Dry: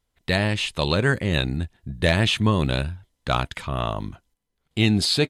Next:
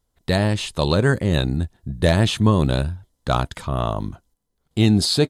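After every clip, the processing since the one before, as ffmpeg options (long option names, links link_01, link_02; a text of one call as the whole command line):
ffmpeg -i in.wav -af "equalizer=frequency=2400:width_type=o:width=1.2:gain=-10,volume=4dB" out.wav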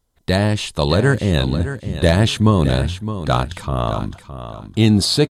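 ffmpeg -i in.wav -af "aecho=1:1:614|1228|1842:0.282|0.0648|0.0149,volume=2.5dB" out.wav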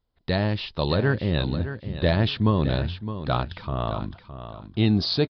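ffmpeg -i in.wav -af "aresample=11025,aresample=44100,volume=-7dB" out.wav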